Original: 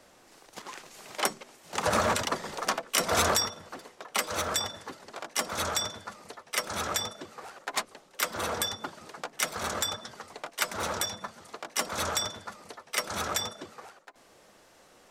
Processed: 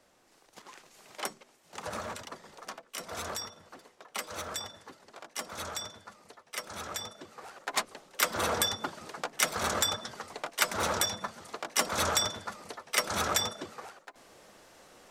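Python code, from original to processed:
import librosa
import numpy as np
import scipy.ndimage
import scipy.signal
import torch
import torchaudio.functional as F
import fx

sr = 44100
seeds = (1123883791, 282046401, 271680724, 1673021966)

y = fx.gain(x, sr, db=fx.line((1.25, -8.0), (2.25, -14.0), (3.19, -14.0), (3.62, -8.0), (6.9, -8.0), (7.94, 2.0)))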